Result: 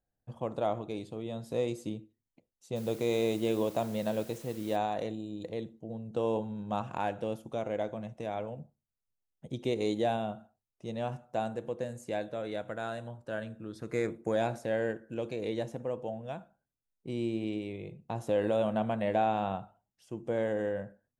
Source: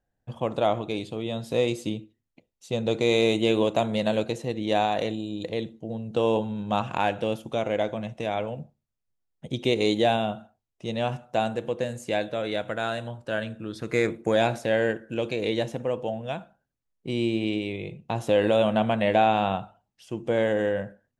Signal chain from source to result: bell 3000 Hz -7.5 dB 1.4 oct; 2.75–4.75 added noise white -47 dBFS; gain -7 dB

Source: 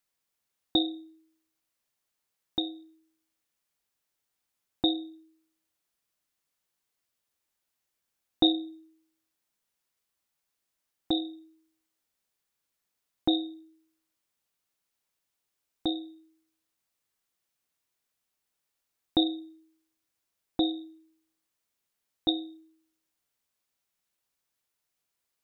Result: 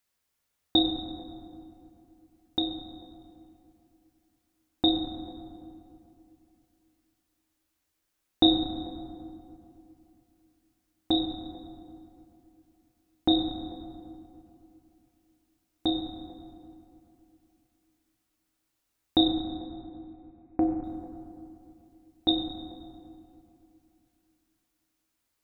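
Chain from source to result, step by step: 19.28–20.84 Chebyshev low-pass 2600 Hz, order 8; on a send: low shelf 72 Hz +12 dB + reverb RT60 2.7 s, pre-delay 6 ms, DRR 2 dB; on the sum: gain +2 dB

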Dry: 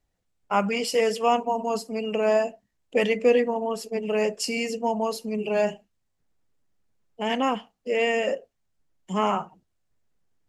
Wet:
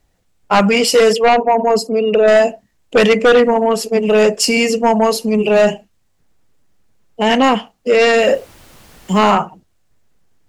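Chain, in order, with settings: 1.13–2.28 formant sharpening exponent 1.5; 8.17–9.31 added noise pink -58 dBFS; sine folder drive 8 dB, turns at -8 dBFS; gain +2.5 dB

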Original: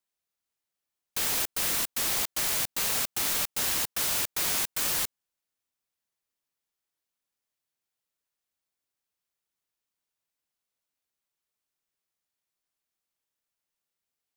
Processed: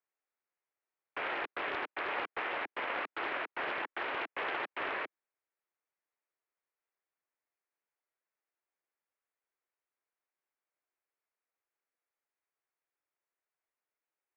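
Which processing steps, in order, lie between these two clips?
added harmonics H 6 -11 dB, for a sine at -14 dBFS; mistuned SSB +76 Hz 240–2300 Hz; Doppler distortion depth 0.29 ms

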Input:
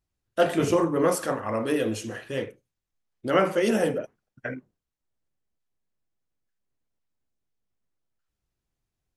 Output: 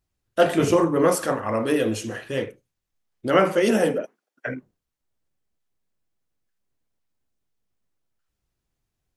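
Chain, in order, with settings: 3.68–4.46 HPF 100 Hz -> 400 Hz 24 dB/oct; gain +3.5 dB

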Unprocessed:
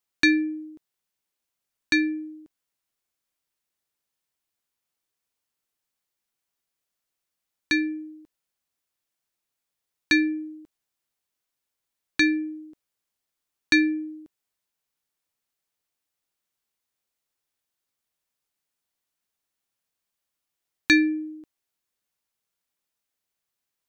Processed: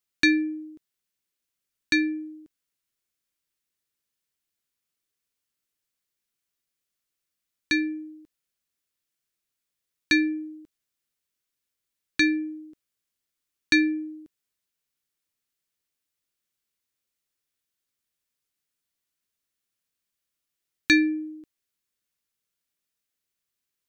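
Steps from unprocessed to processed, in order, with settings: bell 810 Hz -8 dB 1 oct

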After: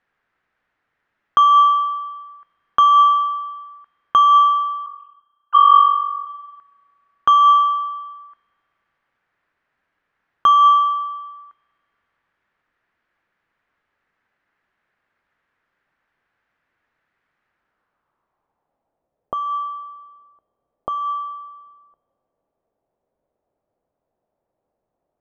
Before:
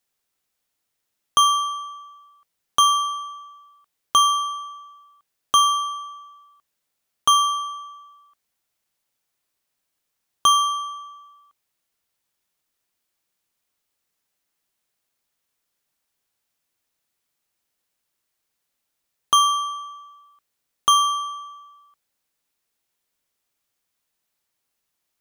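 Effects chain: 4.86–6.27 sine-wave speech; in parallel at +2.5 dB: negative-ratio compressor -22 dBFS, ratio -0.5; on the sum: low-pass sweep 1700 Hz -> 630 Hz, 17.47–19.15; spring tank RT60 2.4 s, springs 33 ms, chirp 65 ms, DRR 19.5 dB; gain -1 dB

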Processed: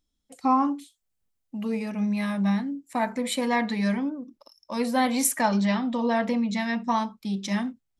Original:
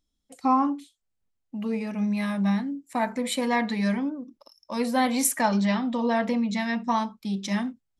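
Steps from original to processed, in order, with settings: 0.6–1.9 high shelf 6800 Hz +7.5 dB

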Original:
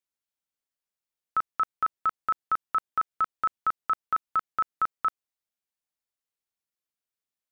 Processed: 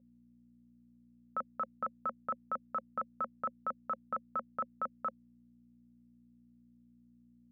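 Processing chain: hum 60 Hz, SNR 28 dB; double band-pass 350 Hz, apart 1.2 oct; gain +11 dB

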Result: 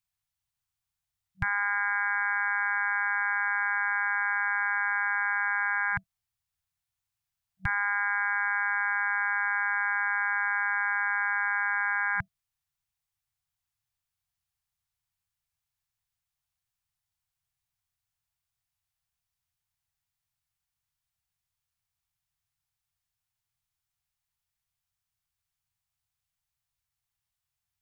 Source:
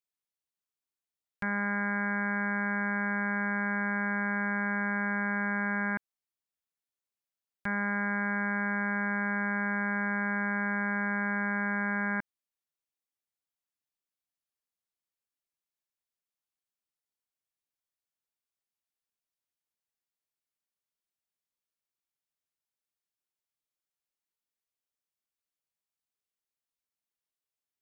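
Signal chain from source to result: FFT band-reject 190–660 Hz; resonant low shelf 160 Hz +12.5 dB, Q 1.5; gain +5 dB

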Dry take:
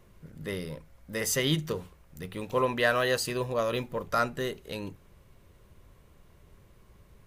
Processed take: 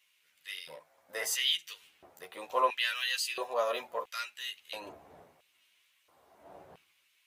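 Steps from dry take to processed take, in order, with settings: wind noise 85 Hz -35 dBFS; chorus voices 4, 0.64 Hz, delay 12 ms, depth 1.6 ms; LFO high-pass square 0.74 Hz 710–2700 Hz

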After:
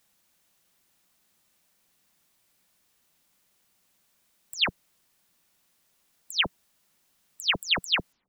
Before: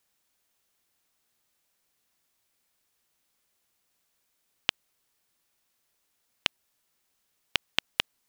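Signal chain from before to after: spectral delay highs early, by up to 0.159 s; bell 180 Hz +6.5 dB 0.6 oct; gain +6 dB

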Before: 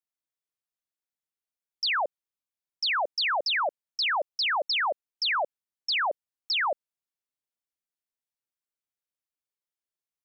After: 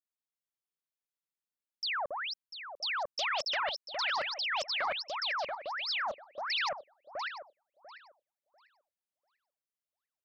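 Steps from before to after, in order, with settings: regenerating reverse delay 0.347 s, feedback 43%, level -3.5 dB; Doppler distortion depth 0.25 ms; gain -7.5 dB

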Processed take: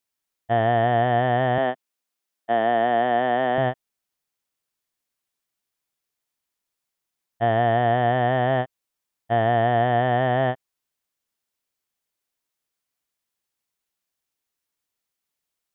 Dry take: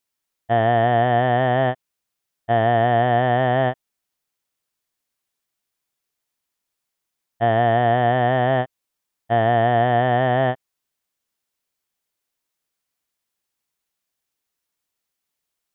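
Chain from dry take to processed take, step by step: 1.58–3.58 HPF 190 Hz 24 dB/oct; gain -2.5 dB

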